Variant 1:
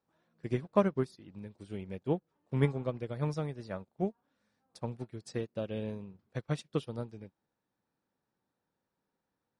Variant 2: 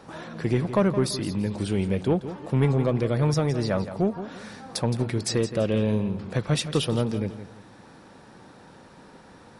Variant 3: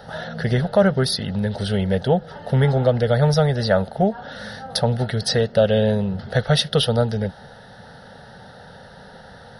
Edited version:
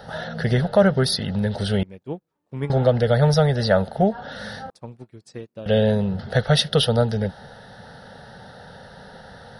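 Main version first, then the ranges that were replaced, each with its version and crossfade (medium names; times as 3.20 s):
3
1.83–2.70 s: from 1
4.70–5.66 s: from 1
not used: 2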